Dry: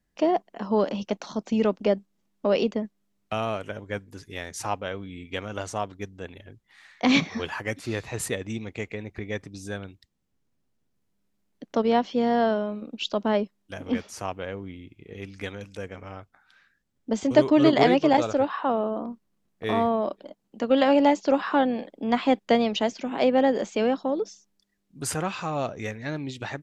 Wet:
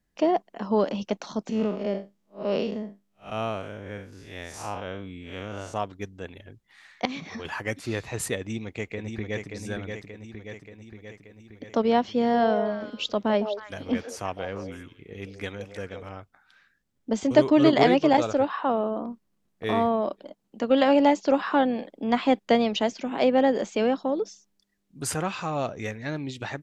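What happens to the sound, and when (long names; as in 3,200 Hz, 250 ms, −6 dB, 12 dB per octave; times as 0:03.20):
0:01.49–0:05.74: spectrum smeared in time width 141 ms
0:07.05–0:07.45: downward compressor 8 to 1, threshold −32 dBFS
0:08.39–0:09.52: delay throw 580 ms, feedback 65%, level −5 dB
0:12.18–0:16.09: echo through a band-pass that steps 158 ms, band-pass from 580 Hz, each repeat 1.4 octaves, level −5 dB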